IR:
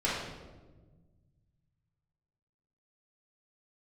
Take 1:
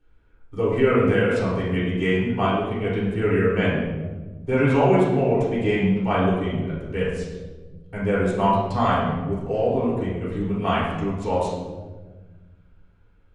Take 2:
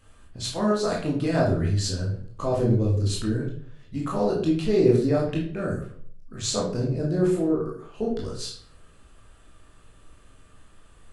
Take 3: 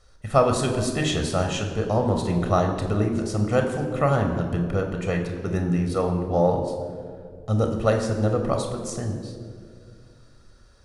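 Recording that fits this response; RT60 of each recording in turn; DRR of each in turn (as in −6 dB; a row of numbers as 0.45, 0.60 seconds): 1; 1.3, 0.50, 2.3 seconds; −9.0, −4.0, 3.5 decibels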